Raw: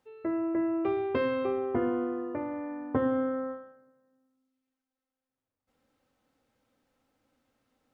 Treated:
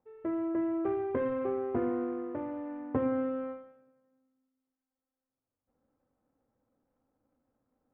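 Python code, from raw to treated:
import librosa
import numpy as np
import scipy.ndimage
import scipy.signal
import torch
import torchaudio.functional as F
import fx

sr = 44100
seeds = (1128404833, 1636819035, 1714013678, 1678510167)

y = scipy.ndimage.median_filter(x, 25, mode='constant')
y = scipy.signal.sosfilt(scipy.signal.butter(4, 2000.0, 'lowpass', fs=sr, output='sos'), y)
y = F.gain(torch.from_numpy(y), -2.0).numpy()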